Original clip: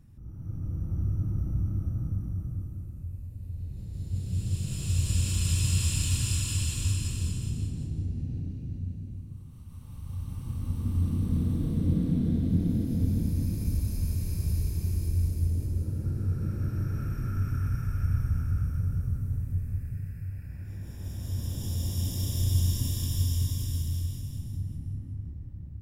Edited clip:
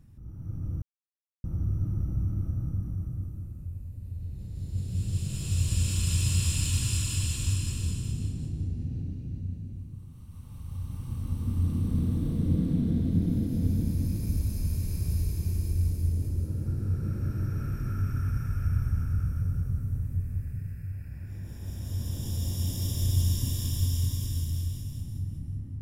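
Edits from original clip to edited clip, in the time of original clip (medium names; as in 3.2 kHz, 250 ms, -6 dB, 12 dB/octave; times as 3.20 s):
0.82 s: insert silence 0.62 s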